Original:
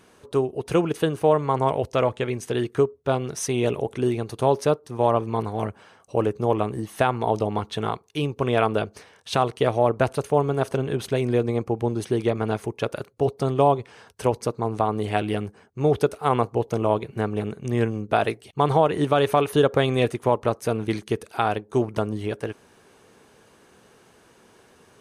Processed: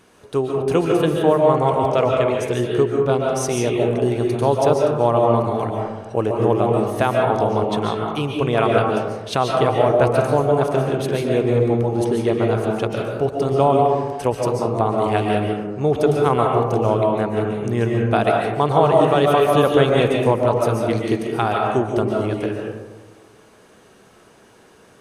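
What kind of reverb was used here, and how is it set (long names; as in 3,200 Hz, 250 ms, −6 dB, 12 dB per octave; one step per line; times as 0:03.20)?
comb and all-pass reverb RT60 1.2 s, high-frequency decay 0.35×, pre-delay 100 ms, DRR −0.5 dB
level +1.5 dB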